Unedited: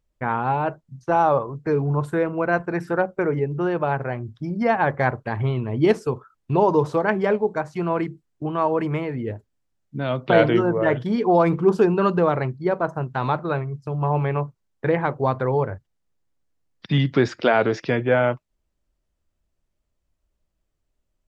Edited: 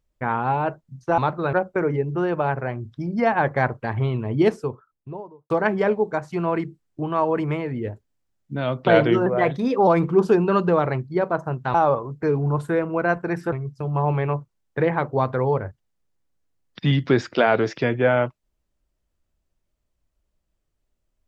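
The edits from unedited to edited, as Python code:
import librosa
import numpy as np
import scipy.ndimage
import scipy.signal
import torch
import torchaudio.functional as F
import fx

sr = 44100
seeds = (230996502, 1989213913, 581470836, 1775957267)

y = fx.studio_fade_out(x, sr, start_s=5.66, length_s=1.27)
y = fx.edit(y, sr, fx.swap(start_s=1.18, length_s=1.78, other_s=13.24, other_length_s=0.35),
    fx.speed_span(start_s=10.69, length_s=0.68, speed=1.11), tone=tone)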